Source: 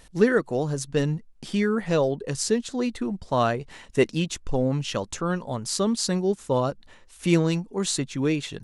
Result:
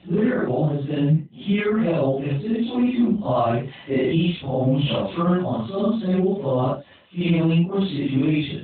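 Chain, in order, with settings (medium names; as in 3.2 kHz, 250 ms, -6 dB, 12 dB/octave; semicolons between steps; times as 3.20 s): phase randomisation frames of 200 ms; peaking EQ 1.6 kHz -7 dB 0.54 oct; hard clipper -11.5 dBFS, distortion -36 dB; 1.59–2.02 s: high-pass 310 Hz -> 120 Hz 24 dB/octave; treble shelf 2.4 kHz +3 dB; peak limiter -19 dBFS, peak gain reduction 9 dB; comb of notches 460 Hz; trim +8.5 dB; AMR-NB 12.2 kbps 8 kHz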